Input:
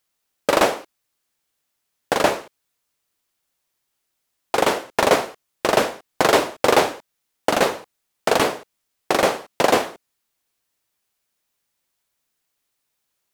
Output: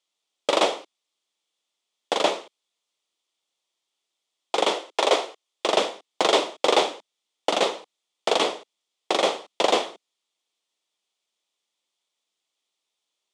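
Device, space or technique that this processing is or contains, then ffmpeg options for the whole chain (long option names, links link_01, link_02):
television speaker: -filter_complex "[0:a]asettb=1/sr,asplit=3[link_01][link_02][link_03];[link_01]atrim=end=4.744[link_04];[link_02]atrim=start=4.74:end=5.67,asetpts=PTS-STARTPTS,afade=type=in:duration=0.004:curve=qsin,afade=type=out:start_time=0.926:duration=0.004:curve=qsin,highpass=frequency=280:width=0.5412,highpass=frequency=280:width=1.3066[link_05];[link_03]atrim=start=5.666[link_06];[link_04][link_05]acrossfade=duration=0.004:curve1=hsin:curve2=qsin[link_07];[link_07][link_06]acrossfade=duration=0.004:curve1=qsin:curve2=hsin,highpass=frequency=220:width=0.5412,highpass=frequency=220:width=1.3066,equalizer=frequency=250:width_type=q:width=4:gain=-7,equalizer=frequency=1600:width_type=q:width=4:gain=-10,equalizer=frequency=3400:width_type=q:width=4:gain=9,lowpass=frequency=8400:width=0.5412,lowpass=frequency=8400:width=1.3066,volume=-3.5dB"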